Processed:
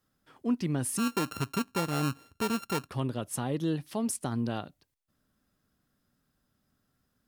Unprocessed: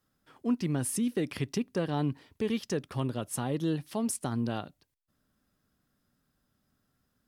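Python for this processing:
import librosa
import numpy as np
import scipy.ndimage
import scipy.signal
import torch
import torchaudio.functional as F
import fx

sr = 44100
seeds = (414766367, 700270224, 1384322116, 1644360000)

y = fx.sample_sort(x, sr, block=32, at=(0.97, 2.88), fade=0.02)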